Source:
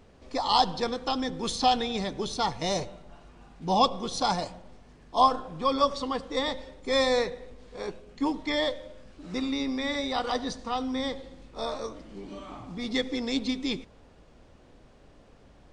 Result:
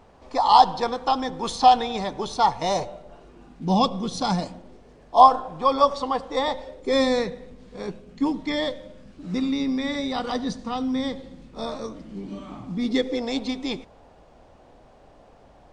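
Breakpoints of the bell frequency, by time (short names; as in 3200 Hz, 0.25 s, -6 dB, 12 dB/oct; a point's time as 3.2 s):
bell +10.5 dB 1.1 oct
2.76 s 880 Hz
3.79 s 180 Hz
4.34 s 180 Hz
5.22 s 800 Hz
6.59 s 800 Hz
7.17 s 190 Hz
12.72 s 190 Hz
13.29 s 750 Hz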